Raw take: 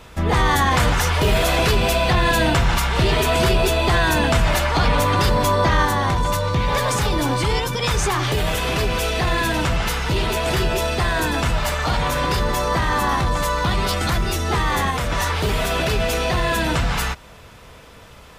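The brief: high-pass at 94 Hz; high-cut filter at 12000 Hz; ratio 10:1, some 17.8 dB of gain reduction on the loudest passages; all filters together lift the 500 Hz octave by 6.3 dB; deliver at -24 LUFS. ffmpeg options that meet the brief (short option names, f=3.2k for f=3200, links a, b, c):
-af "highpass=94,lowpass=12k,equalizer=f=500:t=o:g=8,acompressor=threshold=-30dB:ratio=10,volume=9dB"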